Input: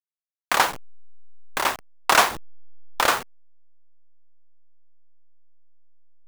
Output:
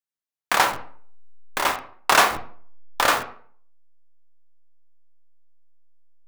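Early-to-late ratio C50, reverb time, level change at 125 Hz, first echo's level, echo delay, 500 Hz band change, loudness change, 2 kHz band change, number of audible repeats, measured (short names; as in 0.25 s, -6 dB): 12.0 dB, 0.50 s, +1.5 dB, none, none, +1.0 dB, +1.0 dB, +1.0 dB, none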